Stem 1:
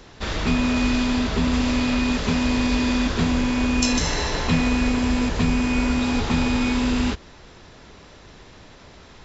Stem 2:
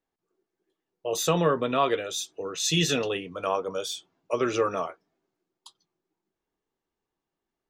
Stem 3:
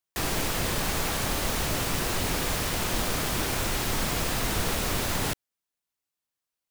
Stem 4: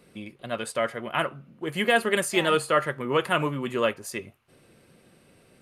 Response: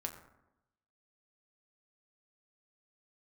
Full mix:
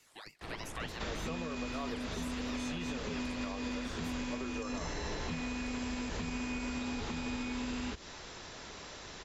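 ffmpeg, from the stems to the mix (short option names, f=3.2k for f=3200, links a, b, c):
-filter_complex "[0:a]lowshelf=f=340:g=-8.5,adelay=800,volume=0.5dB[a];[1:a]volume=-15dB[b];[2:a]lowpass=2.7k,adelay=250,volume=-16dB[c];[3:a]tiltshelf=f=930:g=-5.5,aeval=exprs='val(0)*sin(2*PI*1500*n/s+1500*0.65/3.2*sin(2*PI*3.2*n/s))':c=same,volume=-7dB[d];[a][c][d]amix=inputs=3:normalize=0,acrossover=split=450|2200[e][f][g];[e]acompressor=threshold=-30dB:ratio=4[h];[f]acompressor=threshold=-41dB:ratio=4[i];[g]acompressor=threshold=-37dB:ratio=4[j];[h][i][j]amix=inputs=3:normalize=0,alimiter=level_in=3dB:limit=-24dB:level=0:latency=1:release=188,volume=-3dB,volume=0dB[k];[b][k]amix=inputs=2:normalize=0,acrossover=split=2600[l][m];[m]acompressor=threshold=-50dB:ratio=4:attack=1:release=60[n];[l][n]amix=inputs=2:normalize=0,equalizer=f=7k:w=0.92:g=6,alimiter=level_in=4.5dB:limit=-24dB:level=0:latency=1:release=198,volume=-4.5dB"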